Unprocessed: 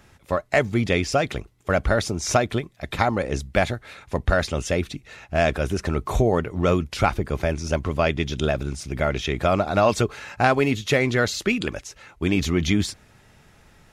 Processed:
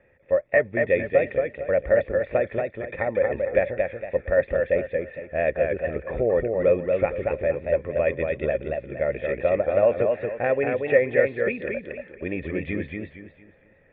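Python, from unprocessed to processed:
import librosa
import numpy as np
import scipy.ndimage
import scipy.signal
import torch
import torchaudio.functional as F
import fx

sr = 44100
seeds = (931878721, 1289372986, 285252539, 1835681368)

y = fx.formant_cascade(x, sr, vowel='e')
y = fx.echo_warbled(y, sr, ms=230, feedback_pct=33, rate_hz=2.8, cents=83, wet_db=-4)
y = y * 10.0 ** (8.0 / 20.0)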